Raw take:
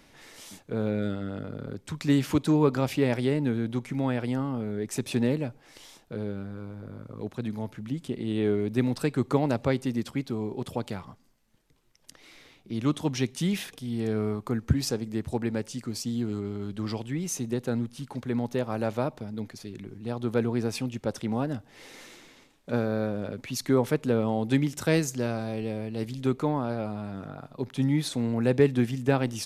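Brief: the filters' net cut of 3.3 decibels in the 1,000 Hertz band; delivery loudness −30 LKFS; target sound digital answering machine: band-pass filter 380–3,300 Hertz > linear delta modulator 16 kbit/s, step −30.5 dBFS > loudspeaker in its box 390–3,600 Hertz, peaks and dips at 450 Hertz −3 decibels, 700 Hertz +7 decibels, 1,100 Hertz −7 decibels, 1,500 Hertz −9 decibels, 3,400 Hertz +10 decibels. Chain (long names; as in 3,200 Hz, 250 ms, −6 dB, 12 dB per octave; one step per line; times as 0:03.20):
band-pass filter 380–3,300 Hz
parametric band 1,000 Hz −6 dB
linear delta modulator 16 kbit/s, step −30.5 dBFS
loudspeaker in its box 390–3,600 Hz, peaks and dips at 450 Hz −3 dB, 700 Hz +7 dB, 1,100 Hz −7 dB, 1,500 Hz −9 dB, 3,400 Hz +10 dB
level +6 dB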